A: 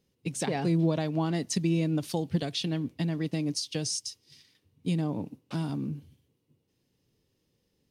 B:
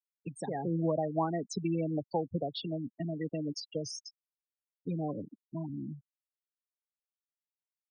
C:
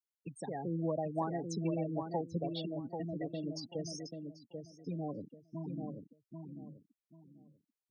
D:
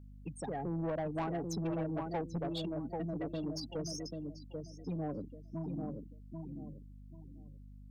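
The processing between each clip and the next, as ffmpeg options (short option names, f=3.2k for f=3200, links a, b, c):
-filter_complex "[0:a]afftfilt=real='re*gte(hypot(re,im),0.0501)':imag='im*gte(hypot(re,im),0.0501)':win_size=1024:overlap=0.75,acrossover=split=240|470|1900[a][b][c][d];[c]dynaudnorm=f=210:g=7:m=12.5dB[e];[a][b][e][d]amix=inputs=4:normalize=0,volume=-7.5dB"
-filter_complex "[0:a]asplit=2[a][b];[b]adelay=788,lowpass=f=1.3k:p=1,volume=-5dB,asplit=2[c][d];[d]adelay=788,lowpass=f=1.3k:p=1,volume=0.26,asplit=2[e][f];[f]adelay=788,lowpass=f=1.3k:p=1,volume=0.26[g];[a][c][e][g]amix=inputs=4:normalize=0,volume=-4.5dB"
-af "aeval=exprs='val(0)+0.002*(sin(2*PI*50*n/s)+sin(2*PI*2*50*n/s)/2+sin(2*PI*3*50*n/s)/3+sin(2*PI*4*50*n/s)/4+sin(2*PI*5*50*n/s)/5)':c=same,asoftclip=type=tanh:threshold=-34dB,volume=3dB"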